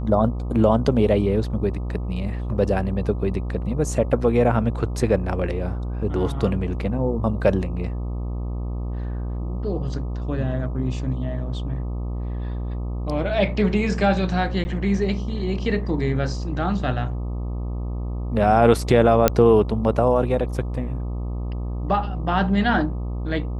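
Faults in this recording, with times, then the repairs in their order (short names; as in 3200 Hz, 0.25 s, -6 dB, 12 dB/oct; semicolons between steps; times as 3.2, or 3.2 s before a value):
buzz 60 Hz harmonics 21 -27 dBFS
14.64–14.65 gap 10 ms
19.28 pop -1 dBFS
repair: de-click; de-hum 60 Hz, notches 21; interpolate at 14.64, 10 ms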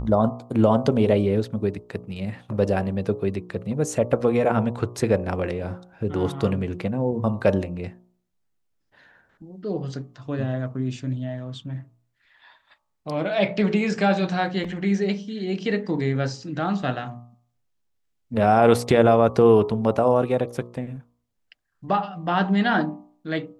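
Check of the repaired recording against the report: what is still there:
none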